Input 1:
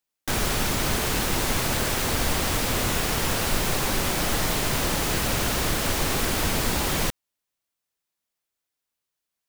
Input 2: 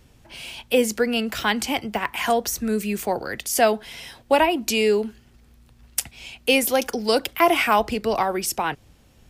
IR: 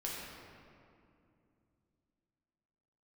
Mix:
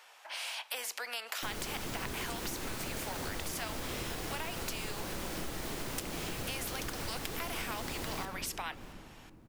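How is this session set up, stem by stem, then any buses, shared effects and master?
-12.5 dB, 1.15 s, send -3 dB, echo send -23.5 dB, peaking EQ 340 Hz +4 dB 1.2 oct
0.0 dB, 0.00 s, send -20.5 dB, no echo send, inverse Chebyshev high-pass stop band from 170 Hz, stop band 70 dB; treble shelf 3.6 kHz -10 dB; spectrum-flattening compressor 2:1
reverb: on, RT60 2.6 s, pre-delay 6 ms
echo: feedback delay 675 ms, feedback 19%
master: compression 6:1, threshold -35 dBFS, peak gain reduction 12 dB

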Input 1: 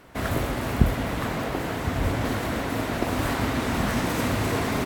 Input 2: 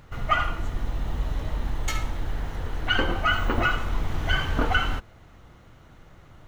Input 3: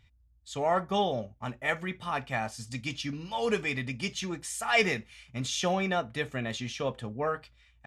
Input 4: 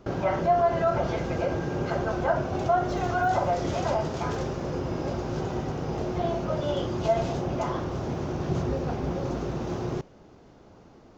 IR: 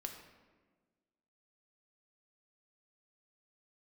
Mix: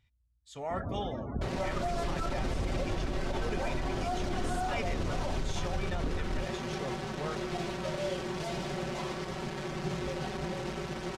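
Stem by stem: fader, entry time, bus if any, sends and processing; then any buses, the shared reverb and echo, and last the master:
-11.0 dB, 0.55 s, no send, gain riding 2 s; loudest bins only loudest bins 32
-5.0 dB, 1.45 s, no send, boxcar filter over 53 samples
-9.0 dB, 0.00 s, no send, none
-10.5 dB, 1.35 s, no send, bit crusher 5-bit; low-pass 6.2 kHz 12 dB/octave; comb 5.3 ms, depth 97%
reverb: none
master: peak limiter -23.5 dBFS, peak gain reduction 9.5 dB

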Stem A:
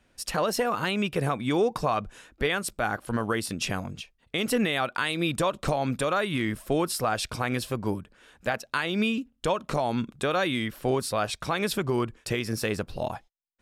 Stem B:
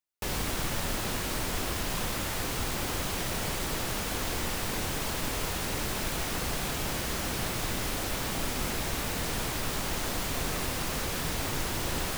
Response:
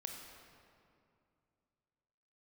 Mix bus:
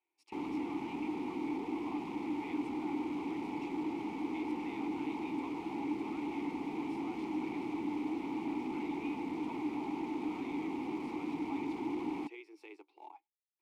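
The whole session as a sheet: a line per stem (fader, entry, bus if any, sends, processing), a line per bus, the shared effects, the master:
-5.0 dB, 0.00 s, no send, elliptic high-pass 360 Hz; short-mantissa float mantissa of 2-bit
+1.0 dB, 0.10 s, no send, peaking EQ 380 Hz +12 dB 2.7 oct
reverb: none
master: overload inside the chain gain 23.5 dB; vowel filter u

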